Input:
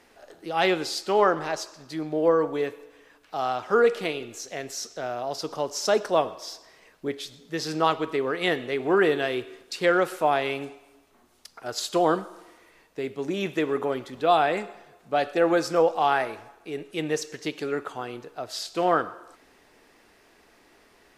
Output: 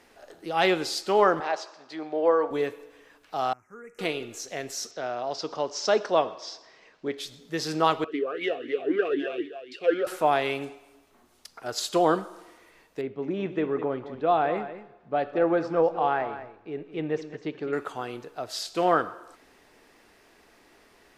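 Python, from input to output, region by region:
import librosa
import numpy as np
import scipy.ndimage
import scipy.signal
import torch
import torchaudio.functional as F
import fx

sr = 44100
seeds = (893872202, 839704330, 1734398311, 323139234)

y = fx.chain(x, sr, fx.bandpass_edges(low_hz=390.0, high_hz=4200.0),
    fx.peak_eq(hz=780.0, db=4.5, octaves=0.38), at=(1.4, 2.51))
y = fx.chain(y, sr, fx.cheby1_bandstop(low_hz=2200.0, high_hz=6200.0, order=3),
    fx.tone_stack(knobs='6-0-2'), at=(3.53, 3.99))
y = fx.chain(y, sr, fx.lowpass(hz=6100.0, slope=24),
    fx.low_shelf(hz=110.0, db=-11.5), at=(4.91, 7.18))
y = fx.chain(y, sr, fx.echo_multitap(ms=(47, 61, 329), db=(-19.5, -19.5, -14.5)),
    fx.leveller(passes=2),
    fx.vowel_sweep(vowels='a-i', hz=3.9), at=(8.04, 10.07))
y = fx.chain(y, sr, fx.spacing_loss(db_at_10k=34),
    fx.echo_single(ms=208, db=-12.0), at=(13.01, 17.73))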